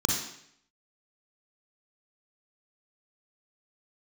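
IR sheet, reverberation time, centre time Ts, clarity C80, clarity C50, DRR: 0.70 s, 50 ms, 5.5 dB, 1.0 dB, -1.0 dB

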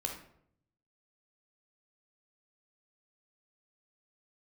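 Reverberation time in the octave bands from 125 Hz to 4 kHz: 1.1 s, 0.90 s, 0.75 s, 0.60 s, 0.55 s, 0.40 s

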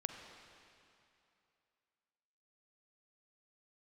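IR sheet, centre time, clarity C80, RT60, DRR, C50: 61 ms, 5.5 dB, 2.8 s, 4.5 dB, 5.0 dB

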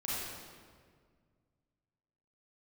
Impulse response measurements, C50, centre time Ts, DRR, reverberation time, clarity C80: -4.0 dB, 128 ms, -8.5 dB, 1.8 s, -1.0 dB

